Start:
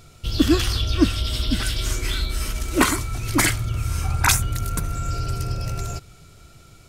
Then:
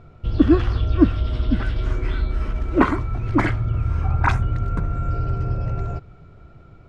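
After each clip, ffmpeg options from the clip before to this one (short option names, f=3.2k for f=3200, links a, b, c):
-af "lowpass=1.3k,volume=3dB"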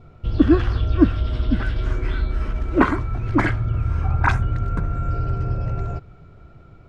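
-af "adynamicequalizer=threshold=0.00501:dfrequency=1600:dqfactor=7.6:tfrequency=1600:tqfactor=7.6:attack=5:release=100:ratio=0.375:range=2.5:mode=boostabove:tftype=bell"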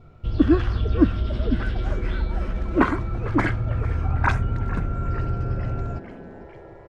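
-filter_complex "[0:a]asplit=7[a][b][c][d][e][f][g];[b]adelay=450,afreqshift=150,volume=-17.5dB[h];[c]adelay=900,afreqshift=300,volume=-21.9dB[i];[d]adelay=1350,afreqshift=450,volume=-26.4dB[j];[e]adelay=1800,afreqshift=600,volume=-30.8dB[k];[f]adelay=2250,afreqshift=750,volume=-35.2dB[l];[g]adelay=2700,afreqshift=900,volume=-39.7dB[m];[a][h][i][j][k][l][m]amix=inputs=7:normalize=0,volume=-2.5dB"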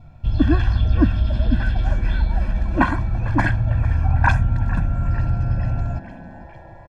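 -af "aecho=1:1:1.2:0.98"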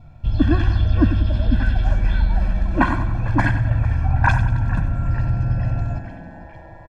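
-af "aecho=1:1:94|188|282|376|470:0.282|0.141|0.0705|0.0352|0.0176"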